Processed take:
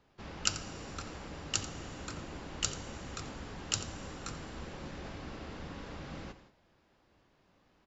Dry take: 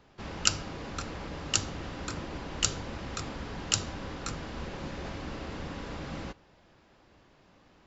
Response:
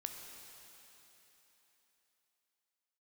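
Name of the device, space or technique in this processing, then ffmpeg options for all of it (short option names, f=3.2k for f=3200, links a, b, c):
keyed gated reverb: -filter_complex "[0:a]aecho=1:1:87:0.178,asplit=3[a][b][c];[1:a]atrim=start_sample=2205[d];[b][d]afir=irnorm=-1:irlink=0[e];[c]apad=whole_len=350727[f];[e][f]sidechaingate=range=-33dB:threshold=-56dB:ratio=16:detection=peak,volume=-4.5dB[g];[a][g]amix=inputs=2:normalize=0,volume=-8.5dB"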